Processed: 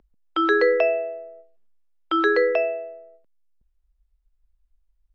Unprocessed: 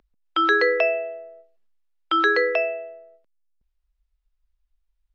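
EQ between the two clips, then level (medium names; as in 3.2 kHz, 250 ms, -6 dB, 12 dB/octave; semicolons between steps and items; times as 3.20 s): tilt shelf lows +5.5 dB, about 840 Hz; 0.0 dB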